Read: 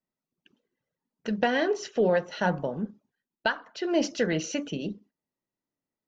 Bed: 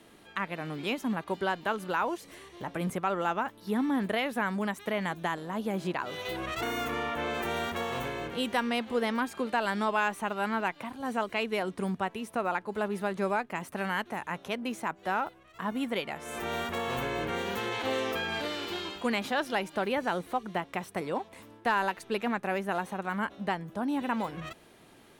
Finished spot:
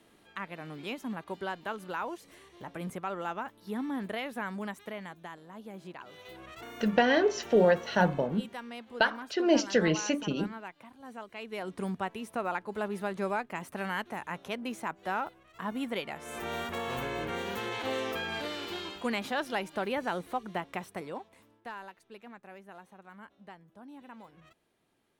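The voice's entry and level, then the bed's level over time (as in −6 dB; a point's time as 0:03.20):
5.55 s, +1.0 dB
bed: 0:04.73 −6 dB
0:05.18 −13 dB
0:11.34 −13 dB
0:11.76 −2.5 dB
0:20.76 −2.5 dB
0:21.97 −18.5 dB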